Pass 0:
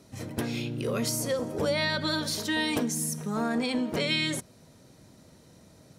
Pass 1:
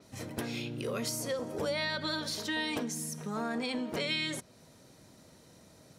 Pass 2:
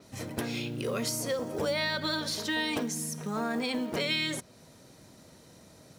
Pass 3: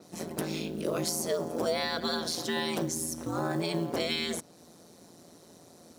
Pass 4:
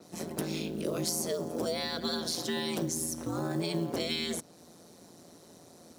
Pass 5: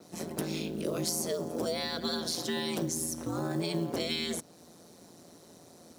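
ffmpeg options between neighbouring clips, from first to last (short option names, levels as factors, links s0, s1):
-af "lowshelf=f=310:g=-5.5,acompressor=threshold=0.0141:ratio=1.5,adynamicequalizer=threshold=0.00282:dfrequency=6700:dqfactor=0.7:tfrequency=6700:tqfactor=0.7:attack=5:release=100:ratio=0.375:range=3.5:mode=cutabove:tftype=highshelf"
-af "acrusher=bits=7:mode=log:mix=0:aa=0.000001,volume=1.41"
-af "aeval=exprs='val(0)*sin(2*PI*84*n/s)':c=same,highpass=140,equalizer=f=2200:w=0.9:g=-7,volume=1.78"
-filter_complex "[0:a]acrossover=split=470|3000[s0][s1][s2];[s1]acompressor=threshold=0.00708:ratio=2[s3];[s0][s3][s2]amix=inputs=3:normalize=0"
-af "acrusher=bits=11:mix=0:aa=0.000001"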